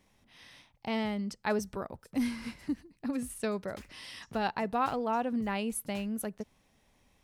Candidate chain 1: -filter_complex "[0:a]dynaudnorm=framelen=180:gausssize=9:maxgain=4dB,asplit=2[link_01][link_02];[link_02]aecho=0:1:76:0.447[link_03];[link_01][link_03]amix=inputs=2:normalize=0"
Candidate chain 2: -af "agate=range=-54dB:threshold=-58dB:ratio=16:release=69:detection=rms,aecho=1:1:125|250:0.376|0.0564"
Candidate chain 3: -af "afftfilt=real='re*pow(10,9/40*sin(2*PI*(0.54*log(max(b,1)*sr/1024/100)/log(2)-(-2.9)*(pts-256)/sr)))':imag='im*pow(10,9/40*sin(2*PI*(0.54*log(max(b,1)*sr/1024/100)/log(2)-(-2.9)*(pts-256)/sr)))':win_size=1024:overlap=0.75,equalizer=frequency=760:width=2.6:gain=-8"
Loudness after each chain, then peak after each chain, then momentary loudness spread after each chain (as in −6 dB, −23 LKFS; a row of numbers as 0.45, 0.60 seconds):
−29.5, −34.0, −34.5 LKFS; −12.5, −18.5, −19.0 dBFS; 11, 10, 13 LU